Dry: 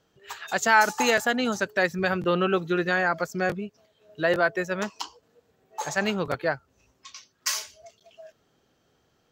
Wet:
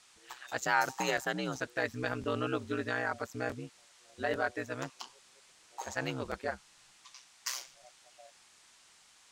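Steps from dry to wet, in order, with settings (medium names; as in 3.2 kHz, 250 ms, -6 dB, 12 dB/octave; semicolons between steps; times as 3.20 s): ring modulator 64 Hz; band noise 720–8700 Hz -55 dBFS; trim -7 dB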